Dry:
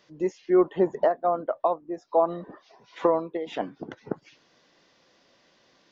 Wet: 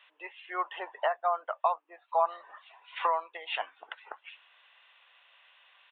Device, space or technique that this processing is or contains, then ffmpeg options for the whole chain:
musical greeting card: -af "aresample=8000,aresample=44100,highpass=frequency=870:width=0.5412,highpass=frequency=870:width=1.3066,equalizer=frequency=2700:width_type=o:width=0.3:gain=8.5,volume=3dB"

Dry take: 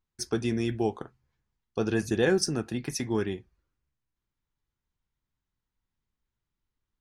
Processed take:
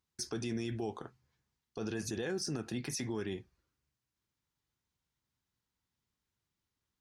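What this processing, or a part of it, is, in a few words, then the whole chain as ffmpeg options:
broadcast voice chain: -af "highpass=74,deesser=0.5,acompressor=threshold=-29dB:ratio=4,equalizer=frequency=5300:width_type=o:width=1.4:gain=5,alimiter=level_in=4.5dB:limit=-24dB:level=0:latency=1:release=32,volume=-4.5dB"

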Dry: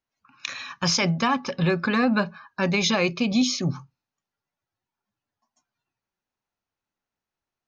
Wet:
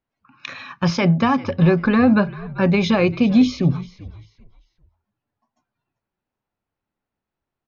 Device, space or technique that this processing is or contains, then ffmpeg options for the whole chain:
phone in a pocket: -filter_complex "[0:a]lowpass=3700,equalizer=frequency=1200:width_type=o:width=2.7:gain=-4,highshelf=frequency=2400:gain=-10,asplit=4[link_01][link_02][link_03][link_04];[link_02]adelay=392,afreqshift=-72,volume=-18.5dB[link_05];[link_03]adelay=784,afreqshift=-144,volume=-28.7dB[link_06];[link_04]adelay=1176,afreqshift=-216,volume=-38.8dB[link_07];[link_01][link_05][link_06][link_07]amix=inputs=4:normalize=0,volume=8.5dB"

